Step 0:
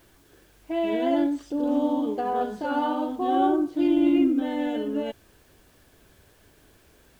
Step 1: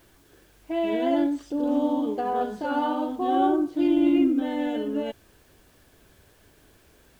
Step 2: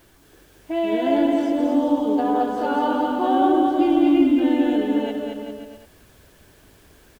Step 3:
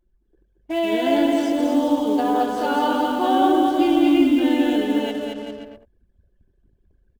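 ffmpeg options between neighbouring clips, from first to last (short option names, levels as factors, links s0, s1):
-af anull
-af "aecho=1:1:220|396|536.8|649.4|739.6:0.631|0.398|0.251|0.158|0.1,volume=1.41"
-af "anlmdn=0.158,highshelf=f=2400:g=10.5"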